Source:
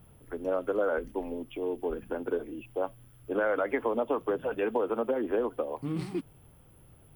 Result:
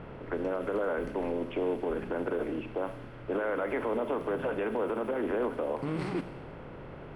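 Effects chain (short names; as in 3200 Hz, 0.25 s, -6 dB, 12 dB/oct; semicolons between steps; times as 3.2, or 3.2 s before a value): per-bin compression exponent 0.6; low-pass opened by the level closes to 2800 Hz, open at -22 dBFS; limiter -23 dBFS, peak gain reduction 8.5 dB; Schroeder reverb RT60 1.2 s, combs from 29 ms, DRR 12 dB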